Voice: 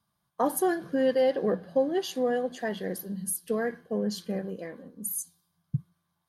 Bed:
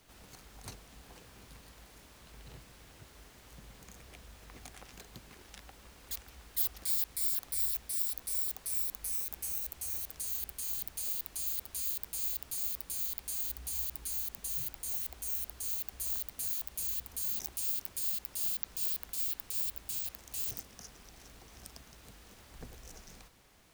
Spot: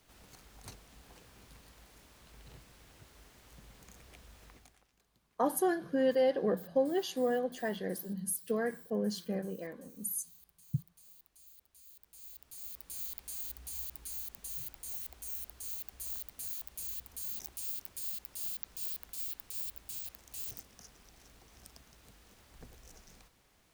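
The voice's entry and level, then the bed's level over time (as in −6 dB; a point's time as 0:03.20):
5.00 s, −4.0 dB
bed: 0:04.47 −3 dB
0:04.92 −22.5 dB
0:11.83 −22.5 dB
0:12.98 −5 dB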